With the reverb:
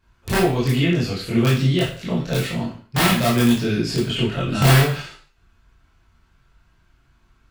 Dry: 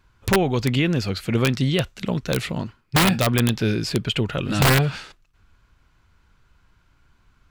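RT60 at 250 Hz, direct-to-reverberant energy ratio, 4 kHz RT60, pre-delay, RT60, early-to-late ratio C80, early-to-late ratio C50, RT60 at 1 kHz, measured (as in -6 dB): 0.40 s, -8.0 dB, 0.40 s, 18 ms, 0.45 s, 9.0 dB, 3.5 dB, 0.45 s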